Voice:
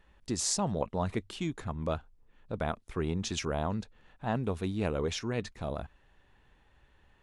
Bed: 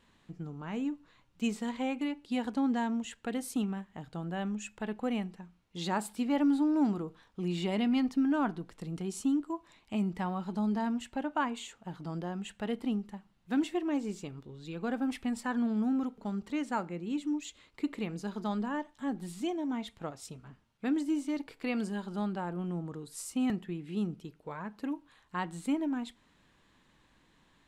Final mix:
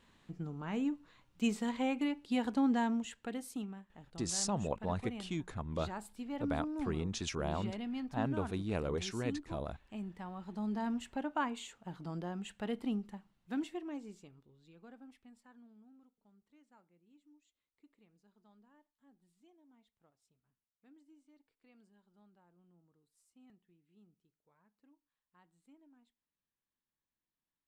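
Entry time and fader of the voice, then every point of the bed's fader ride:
3.90 s, -4.5 dB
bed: 2.87 s -0.5 dB
3.80 s -11.5 dB
10.26 s -11.5 dB
10.91 s -3.5 dB
13.20 s -3.5 dB
15.94 s -32.5 dB

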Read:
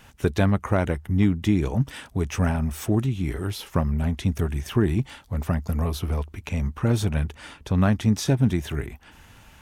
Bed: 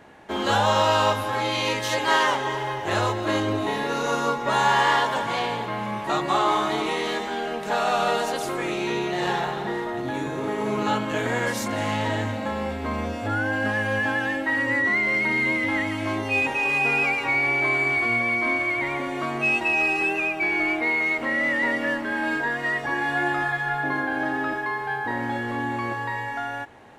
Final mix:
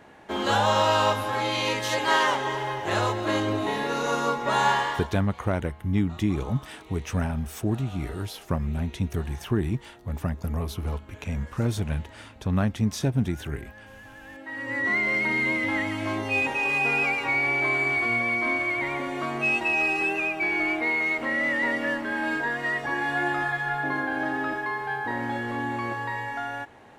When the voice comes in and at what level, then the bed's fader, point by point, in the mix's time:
4.75 s, -4.0 dB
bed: 4.69 s -1.5 dB
5.29 s -23.5 dB
14.12 s -23.5 dB
14.91 s -2 dB

